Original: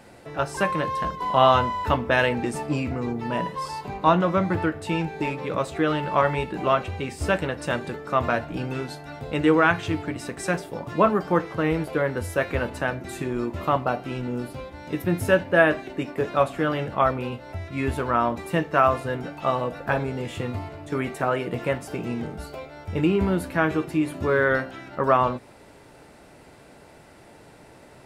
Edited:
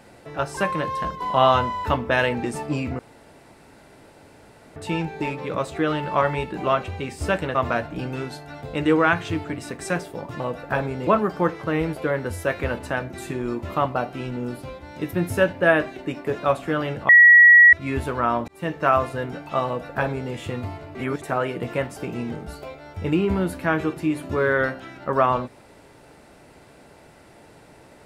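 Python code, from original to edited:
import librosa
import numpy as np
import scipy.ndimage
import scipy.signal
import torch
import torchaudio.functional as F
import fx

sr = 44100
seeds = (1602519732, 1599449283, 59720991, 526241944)

y = fx.edit(x, sr, fx.room_tone_fill(start_s=2.99, length_s=1.77),
    fx.cut(start_s=7.55, length_s=0.58),
    fx.bleep(start_s=17.0, length_s=0.64, hz=1920.0, db=-7.0),
    fx.fade_in_span(start_s=18.39, length_s=0.29),
    fx.duplicate(start_s=19.57, length_s=0.67, to_s=10.98),
    fx.reverse_span(start_s=20.86, length_s=0.27), tone=tone)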